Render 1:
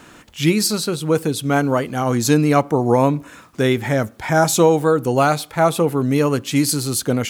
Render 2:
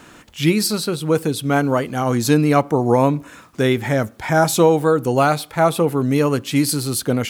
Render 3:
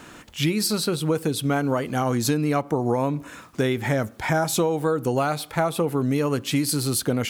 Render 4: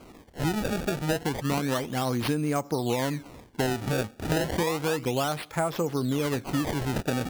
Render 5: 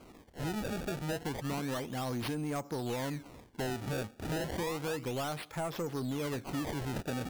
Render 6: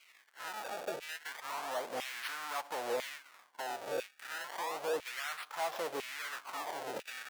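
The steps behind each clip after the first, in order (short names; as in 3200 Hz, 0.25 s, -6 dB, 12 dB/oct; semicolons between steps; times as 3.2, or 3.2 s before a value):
dynamic EQ 6700 Hz, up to -5 dB, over -40 dBFS, Q 2.6
compressor, threshold -19 dBFS, peak gain reduction 10.5 dB
decimation with a swept rate 24×, swing 160% 0.31 Hz; gain -4.5 dB
soft clip -24 dBFS, distortion -14 dB; gain -5.5 dB
half-waves squared off; LFO high-pass saw down 1 Hz 460–2500 Hz; gain -4 dB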